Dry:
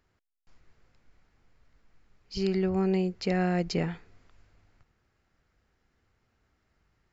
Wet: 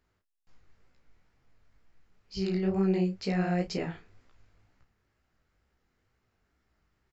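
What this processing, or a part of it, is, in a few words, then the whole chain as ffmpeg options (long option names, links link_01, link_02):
double-tracked vocal: -filter_complex "[0:a]asplit=2[link_01][link_02];[link_02]adelay=32,volume=-10dB[link_03];[link_01][link_03]amix=inputs=2:normalize=0,flanger=delay=15:depth=7.9:speed=2.1"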